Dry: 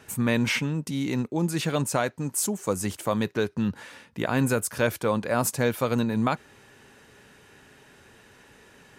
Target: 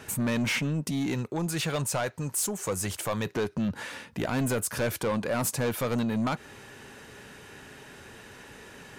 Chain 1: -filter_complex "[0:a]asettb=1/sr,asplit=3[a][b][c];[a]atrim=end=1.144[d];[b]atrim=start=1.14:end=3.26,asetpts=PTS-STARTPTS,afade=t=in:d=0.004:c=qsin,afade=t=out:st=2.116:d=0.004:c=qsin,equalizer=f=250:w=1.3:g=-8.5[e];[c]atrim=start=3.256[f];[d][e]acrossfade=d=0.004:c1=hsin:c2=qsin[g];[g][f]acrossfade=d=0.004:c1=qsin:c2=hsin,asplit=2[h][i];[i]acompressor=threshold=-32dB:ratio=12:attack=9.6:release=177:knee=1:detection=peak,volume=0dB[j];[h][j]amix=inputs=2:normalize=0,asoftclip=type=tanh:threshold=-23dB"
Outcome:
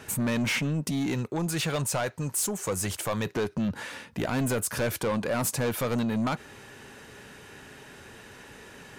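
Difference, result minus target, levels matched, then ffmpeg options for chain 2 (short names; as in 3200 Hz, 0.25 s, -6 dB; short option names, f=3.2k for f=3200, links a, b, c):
compressor: peak gain reduction -5.5 dB
-filter_complex "[0:a]asettb=1/sr,asplit=3[a][b][c];[a]atrim=end=1.144[d];[b]atrim=start=1.14:end=3.26,asetpts=PTS-STARTPTS,afade=t=in:d=0.004:c=qsin,afade=t=out:st=2.116:d=0.004:c=qsin,equalizer=f=250:w=1.3:g=-8.5[e];[c]atrim=start=3.256[f];[d][e]acrossfade=d=0.004:c1=hsin:c2=qsin[g];[g][f]acrossfade=d=0.004:c1=qsin:c2=hsin,asplit=2[h][i];[i]acompressor=threshold=-38dB:ratio=12:attack=9.6:release=177:knee=1:detection=peak,volume=0dB[j];[h][j]amix=inputs=2:normalize=0,asoftclip=type=tanh:threshold=-23dB"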